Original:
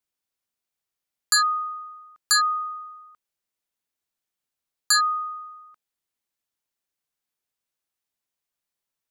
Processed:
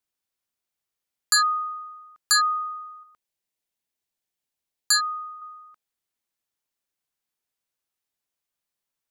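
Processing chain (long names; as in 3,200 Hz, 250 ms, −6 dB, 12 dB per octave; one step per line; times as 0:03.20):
0:03.03–0:05.42: parametric band 1,300 Hz −5.5 dB 0.55 octaves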